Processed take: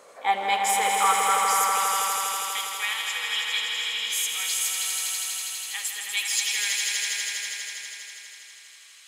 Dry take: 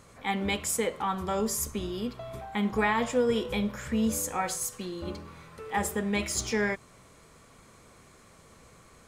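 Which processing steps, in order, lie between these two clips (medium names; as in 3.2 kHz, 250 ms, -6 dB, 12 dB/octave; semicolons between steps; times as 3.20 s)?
high-pass sweep 530 Hz -> 3 kHz, 0.06–2.20 s; echo with a slow build-up 81 ms, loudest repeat 5, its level -5.5 dB; trim +3 dB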